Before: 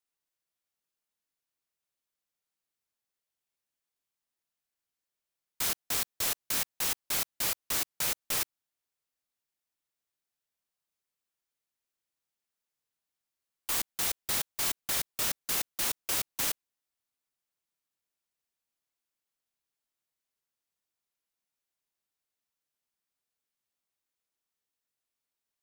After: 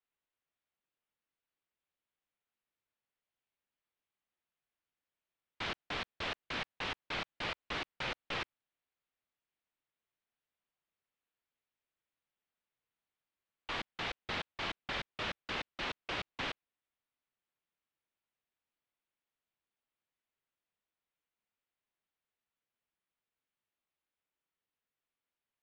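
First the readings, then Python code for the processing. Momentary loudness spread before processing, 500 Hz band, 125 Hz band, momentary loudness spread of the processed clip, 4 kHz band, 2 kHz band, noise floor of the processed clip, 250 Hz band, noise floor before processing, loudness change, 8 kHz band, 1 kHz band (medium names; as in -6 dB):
3 LU, 0.0 dB, 0.0 dB, 3 LU, -5.0 dB, 0.0 dB, under -85 dBFS, 0.0 dB, under -85 dBFS, -9.5 dB, -27.0 dB, 0.0 dB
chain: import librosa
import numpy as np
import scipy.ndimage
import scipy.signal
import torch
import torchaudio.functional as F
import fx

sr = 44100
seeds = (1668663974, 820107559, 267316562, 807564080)

y = scipy.signal.sosfilt(scipy.signal.butter(4, 3400.0, 'lowpass', fs=sr, output='sos'), x)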